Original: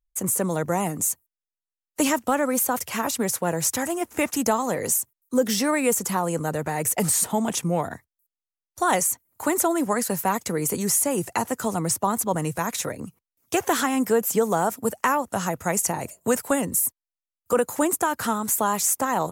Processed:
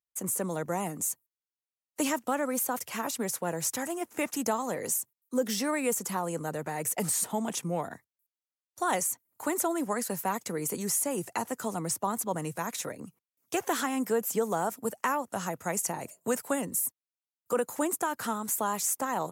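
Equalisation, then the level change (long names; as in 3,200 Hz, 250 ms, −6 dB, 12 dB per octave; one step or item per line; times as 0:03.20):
high-pass filter 140 Hz 12 dB per octave
−7.0 dB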